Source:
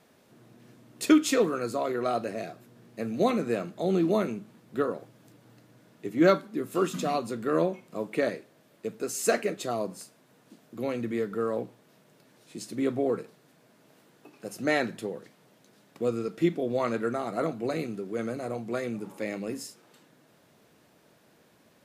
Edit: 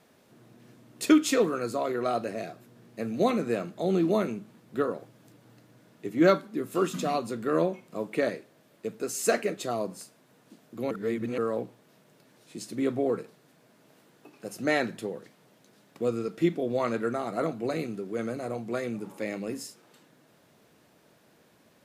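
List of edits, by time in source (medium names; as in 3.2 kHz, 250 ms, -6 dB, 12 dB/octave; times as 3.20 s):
10.91–11.38 s: reverse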